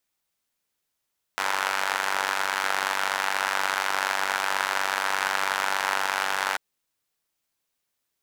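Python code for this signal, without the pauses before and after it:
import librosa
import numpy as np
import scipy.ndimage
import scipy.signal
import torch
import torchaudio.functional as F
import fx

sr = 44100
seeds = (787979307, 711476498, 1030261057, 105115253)

y = fx.engine_four(sr, seeds[0], length_s=5.19, rpm=2900, resonances_hz=(950.0, 1400.0))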